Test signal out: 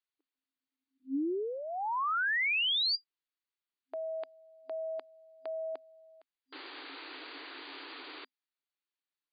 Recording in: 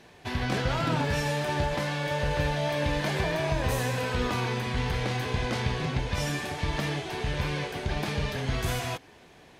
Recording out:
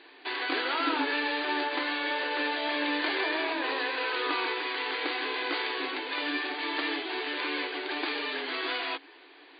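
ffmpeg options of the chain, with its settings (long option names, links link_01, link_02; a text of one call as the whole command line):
ffmpeg -i in.wav -af "afftfilt=real='re*between(b*sr/4096,260,4800)':imag='im*between(b*sr/4096,260,4800)':win_size=4096:overlap=0.75,equalizer=frequency=590:width_type=o:width=0.86:gain=-10.5,volume=4dB" out.wav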